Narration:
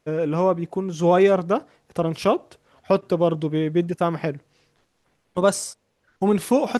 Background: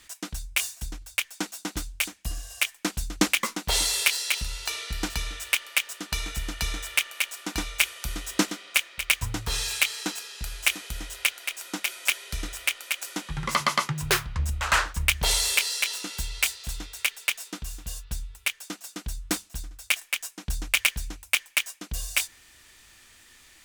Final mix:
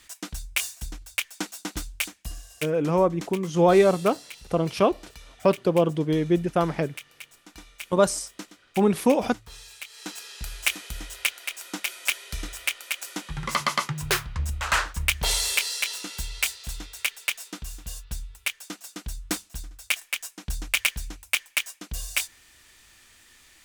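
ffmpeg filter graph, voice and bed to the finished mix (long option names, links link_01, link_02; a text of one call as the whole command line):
ffmpeg -i stem1.wav -i stem2.wav -filter_complex "[0:a]adelay=2550,volume=-1dB[link_01];[1:a]volume=15dB,afade=type=out:start_time=1.93:duration=0.95:silence=0.158489,afade=type=in:start_time=9.88:duration=0.42:silence=0.16788[link_02];[link_01][link_02]amix=inputs=2:normalize=0" out.wav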